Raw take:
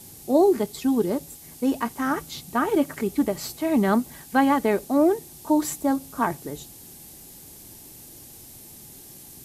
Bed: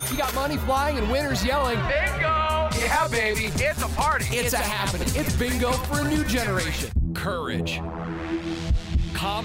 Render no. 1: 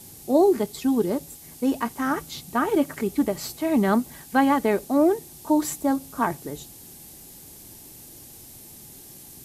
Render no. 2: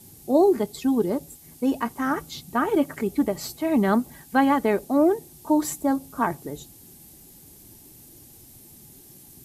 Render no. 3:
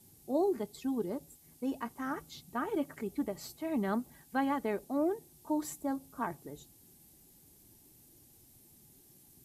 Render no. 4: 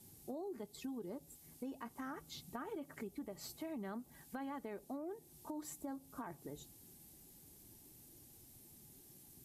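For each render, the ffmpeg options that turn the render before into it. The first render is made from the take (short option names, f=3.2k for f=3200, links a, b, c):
-af anull
-af "afftdn=nr=6:nf=-45"
-af "volume=-12dB"
-af "alimiter=level_in=3.5dB:limit=-24dB:level=0:latency=1:release=32,volume=-3.5dB,acompressor=threshold=-44dB:ratio=4"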